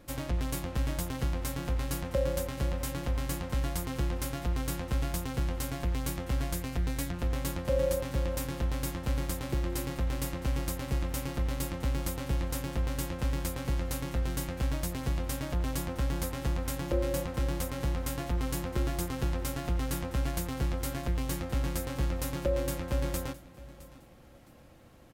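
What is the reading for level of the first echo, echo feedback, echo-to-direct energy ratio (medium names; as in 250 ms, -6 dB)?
-19.0 dB, 27%, -18.5 dB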